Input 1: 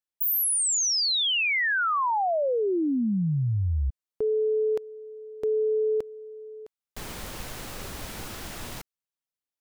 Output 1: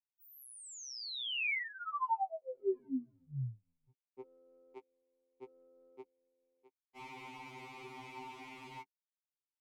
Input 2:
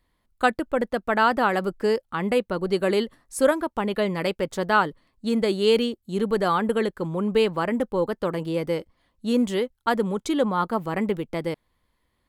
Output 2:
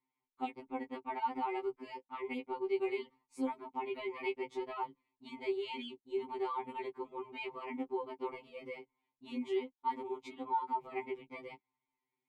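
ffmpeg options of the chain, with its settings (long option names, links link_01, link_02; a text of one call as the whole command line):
ffmpeg -i in.wav -filter_complex "[0:a]equalizer=frequency=110:width=1.4:gain=-4,agate=range=-7dB:threshold=-46dB:ratio=3:release=37:detection=rms,asplit=3[link_01][link_02][link_03];[link_01]bandpass=frequency=300:width_type=q:width=8,volume=0dB[link_04];[link_02]bandpass=frequency=870:width_type=q:width=8,volume=-6dB[link_05];[link_03]bandpass=frequency=2240:width_type=q:width=8,volume=-9dB[link_06];[link_04][link_05][link_06]amix=inputs=3:normalize=0,equalizer=frequency=250:width=5.9:gain=-12,acompressor=threshold=-40dB:ratio=5:attack=4.6:release=139:knee=6:detection=peak,afftfilt=real='re*2.45*eq(mod(b,6),0)':imag='im*2.45*eq(mod(b,6),0)':win_size=2048:overlap=0.75,volume=9.5dB" out.wav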